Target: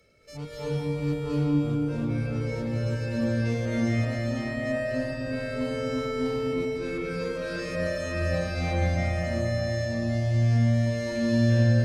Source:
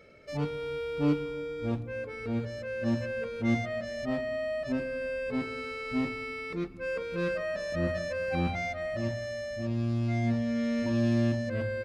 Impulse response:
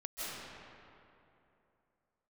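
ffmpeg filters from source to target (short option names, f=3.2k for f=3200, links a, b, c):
-filter_complex "[0:a]bass=f=250:g=1,treble=f=4k:g=14,acrossover=split=130|1000|3400[a][b][c][d];[a]acontrast=55[e];[e][b][c][d]amix=inputs=4:normalize=0[f];[1:a]atrim=start_sample=2205,asetrate=31311,aresample=44100[g];[f][g]afir=irnorm=-1:irlink=0,volume=-4.5dB"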